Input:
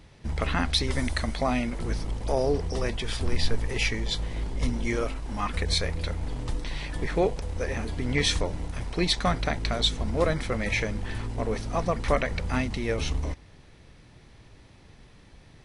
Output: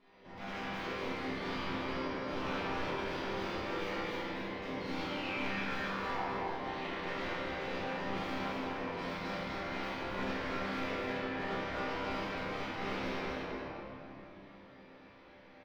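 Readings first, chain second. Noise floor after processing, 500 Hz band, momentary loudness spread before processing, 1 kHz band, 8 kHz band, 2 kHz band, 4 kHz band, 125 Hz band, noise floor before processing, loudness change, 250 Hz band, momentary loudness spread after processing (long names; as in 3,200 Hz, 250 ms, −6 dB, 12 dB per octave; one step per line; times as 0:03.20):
−56 dBFS, −9.0 dB, 8 LU, −4.0 dB, −21.0 dB, −5.5 dB, −13.0 dB, −16.5 dB, −53 dBFS, −9.5 dB, −7.5 dB, 12 LU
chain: high-pass filter 410 Hz 12 dB per octave
in parallel at 0 dB: downward compressor, threshold −34 dBFS, peak gain reduction 14 dB
on the sum: sound drawn into the spectrogram fall, 0:04.80–0:06.26, 700–4,400 Hz −34 dBFS
wrap-around overflow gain 25 dB
random phases in short frames
high-frequency loss of the air 260 metres
resonators tuned to a chord C2 sus4, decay 0.54 s
on a send: single-tap delay 259 ms −4 dB
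on the sum: rectangular room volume 170 cubic metres, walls hard, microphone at 1.3 metres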